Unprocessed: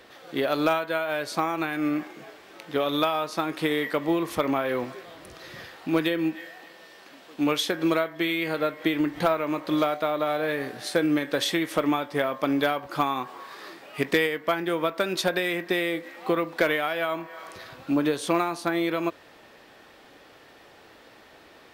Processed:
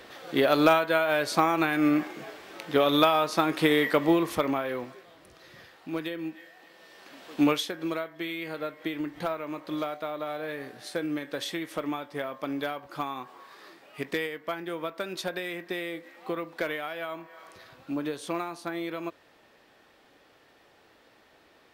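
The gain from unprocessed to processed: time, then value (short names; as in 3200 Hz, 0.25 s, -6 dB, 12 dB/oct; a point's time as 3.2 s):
4.05 s +3 dB
5.05 s -9 dB
6.52 s -9 dB
7.4 s +4 dB
7.7 s -8 dB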